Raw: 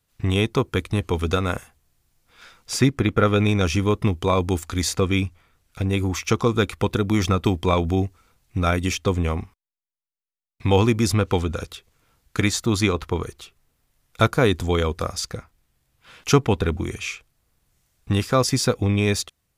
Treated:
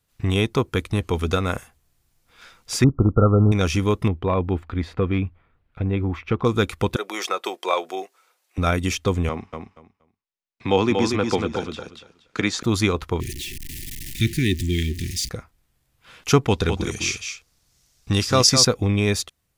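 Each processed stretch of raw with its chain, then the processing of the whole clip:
0:02.84–0:03.52: variable-slope delta modulation 64 kbit/s + linear-phase brick-wall low-pass 1,400 Hz + low-shelf EQ 110 Hz +10.5 dB
0:04.08–0:06.45: hard clipping −12 dBFS + high-frequency loss of the air 480 metres
0:06.96–0:08.58: high-pass filter 450 Hz 24 dB per octave + comb filter 5.5 ms, depth 31%
0:09.29–0:12.63: three-way crossover with the lows and the highs turned down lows −13 dB, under 160 Hz, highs −23 dB, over 6,900 Hz + repeating echo 236 ms, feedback 18%, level −5 dB
0:13.20–0:15.29: converter with a step at zero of −27 dBFS + Chebyshev band-stop filter 370–1,800 Hz, order 5
0:16.48–0:18.65: parametric band 5,400 Hz +11.5 dB 1.2 octaves + single-tap delay 207 ms −7 dB
whole clip: no processing

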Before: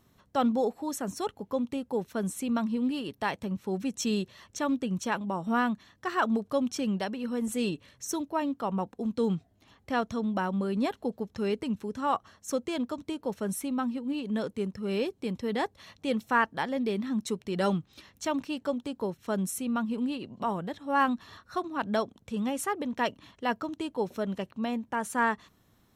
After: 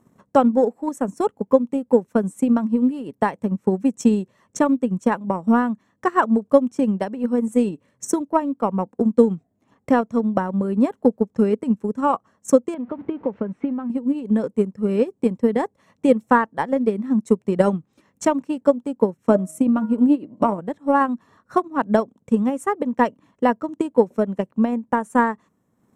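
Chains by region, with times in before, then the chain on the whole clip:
0:12.74–0:13.90: converter with a step at zero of −40.5 dBFS + low-pass filter 3,200 Hz 24 dB per octave + downward compressor 4 to 1, threshold −33 dBFS
0:19.29–0:20.60: hum removal 157.8 Hz, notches 14 + hollow resonant body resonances 300/600 Hz, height 11 dB, ringing for 85 ms
whole clip: octave-band graphic EQ 125/250/500/1,000/2,000/4,000/8,000 Hz +4/+6/+11/+9/+6/−7/+12 dB; transient designer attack +10 dB, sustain −7 dB; parametric band 190 Hz +9.5 dB 1.7 octaves; level −9 dB

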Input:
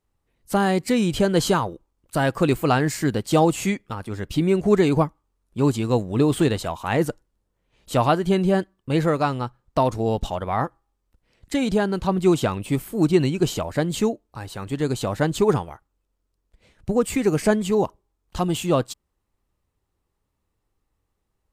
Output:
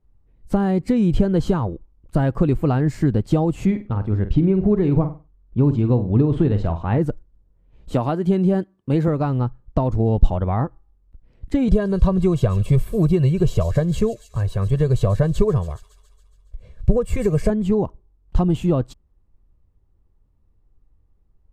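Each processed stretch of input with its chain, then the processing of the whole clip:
0:03.65–0:06.99: high-frequency loss of the air 110 metres + flutter between parallel walls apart 8.2 metres, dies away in 0.26 s
0:07.94–0:09.08: high-pass filter 160 Hz + high-shelf EQ 4,900 Hz +7 dB
0:11.68–0:17.50: high-shelf EQ 6,200 Hz +7 dB + comb filter 1.8 ms, depth 86% + delay with a high-pass on its return 139 ms, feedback 61%, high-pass 4,600 Hz, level −7 dB
whole clip: downward compressor 4 to 1, threshold −21 dBFS; spectral tilt −4 dB per octave; level −1 dB

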